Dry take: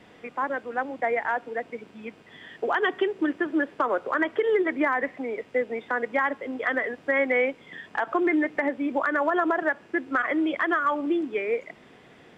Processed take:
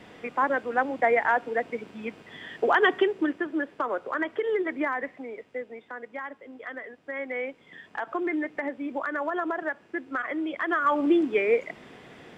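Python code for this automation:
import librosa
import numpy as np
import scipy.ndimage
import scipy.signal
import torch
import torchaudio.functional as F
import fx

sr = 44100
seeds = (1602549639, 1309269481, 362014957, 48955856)

y = fx.gain(x, sr, db=fx.line((2.91, 3.5), (3.5, -4.0), (4.88, -4.0), (5.95, -12.0), (7.01, -12.0), (7.79, -5.5), (10.55, -5.5), (11.03, 4.0)))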